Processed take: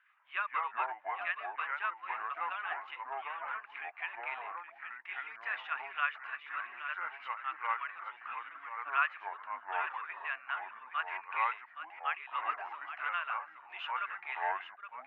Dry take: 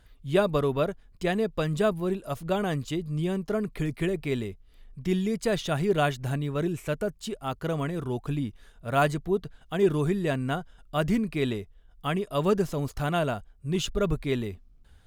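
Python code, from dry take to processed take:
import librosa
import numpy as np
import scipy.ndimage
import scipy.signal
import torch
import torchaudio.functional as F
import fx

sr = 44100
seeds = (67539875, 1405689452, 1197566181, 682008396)

y = scipy.signal.sosfilt(scipy.signal.cheby1(3, 1.0, [1100.0, 2600.0], 'bandpass', fs=sr, output='sos'), x)
y = y + 10.0 ** (-10.0 / 20.0) * np.pad(y, (int(820 * sr / 1000.0), 0))[:len(y)]
y = fx.echo_pitch(y, sr, ms=95, semitones=-4, count=2, db_per_echo=-3.0)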